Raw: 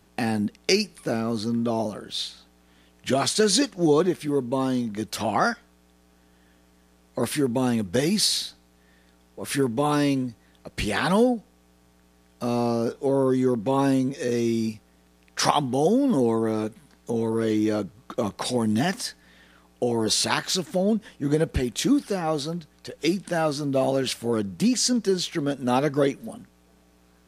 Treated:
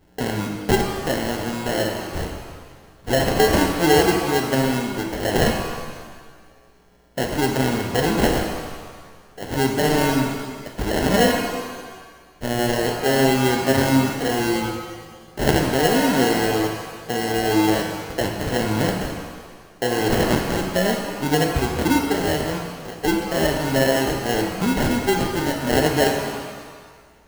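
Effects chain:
parametric band 220 Hz −10 dB 0.23 octaves
sample-rate reduction 1,200 Hz, jitter 0%
reverb with rising layers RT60 1.5 s, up +7 semitones, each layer −8 dB, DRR 2.5 dB
level +2.5 dB

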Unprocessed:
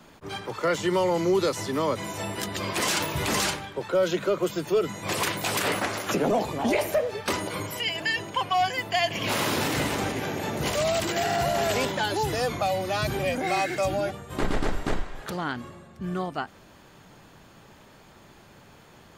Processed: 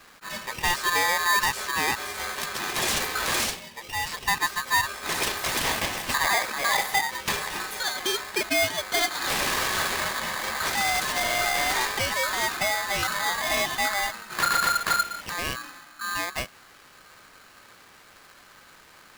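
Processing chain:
0:03.44–0:04.28: high-pass filter 1,200 Hz 6 dB per octave
ring modulator with a square carrier 1,400 Hz

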